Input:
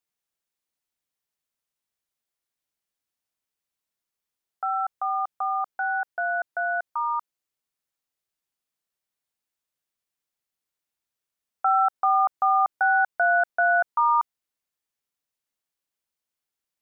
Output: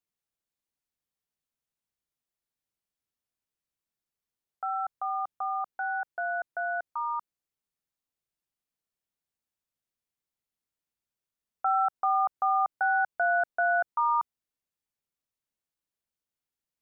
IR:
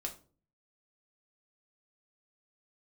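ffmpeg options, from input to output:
-af "lowshelf=f=380:g=8,volume=-6dB"

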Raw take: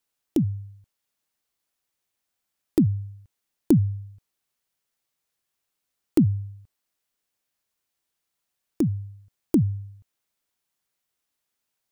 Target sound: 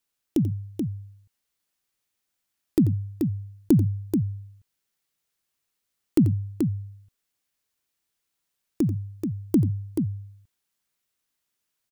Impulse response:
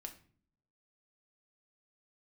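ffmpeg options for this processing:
-af "equalizer=f=710:t=o:w=1.3:g=-3.5,aecho=1:1:88|432:0.211|0.531"

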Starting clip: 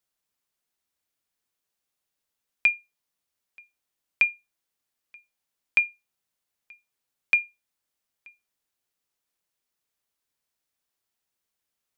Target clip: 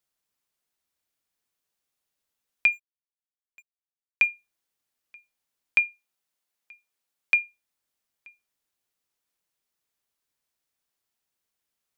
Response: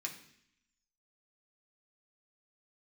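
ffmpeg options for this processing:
-filter_complex "[0:a]asplit=3[a][b][c];[a]afade=t=out:st=2.71:d=0.02[d];[b]aeval=exprs='sgn(val(0))*max(abs(val(0))-0.00251,0)':c=same,afade=t=in:st=2.71:d=0.02,afade=t=out:st=4.25:d=0.02[e];[c]afade=t=in:st=4.25:d=0.02[f];[d][e][f]amix=inputs=3:normalize=0,asettb=1/sr,asplit=3[g][h][i];[g]atrim=end=5.794[j];[h]atrim=start=5.79:end=7.37,asetpts=PTS-STARTPTS,afade=t=in:d=0.004:c=qsin,afade=t=out:st=1.576:d=0.004:c=qsin,lowshelf=f=140:g=-11.5[k];[i]atrim=start=7.366[l];[j][k]acrossfade=d=0.004:c1=hsin:c2=qsin[m];[m][l]acrossfade=d=0.004:c1=qsin:c2=hsin"

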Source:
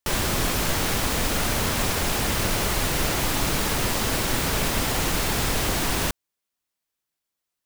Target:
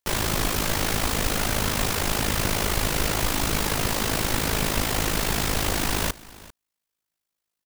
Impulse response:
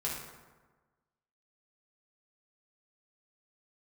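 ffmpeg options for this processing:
-filter_complex "[0:a]asplit=2[a][b];[b]aecho=0:1:395:0.1[c];[a][c]amix=inputs=2:normalize=0,tremolo=f=53:d=0.71,volume=2.5dB"

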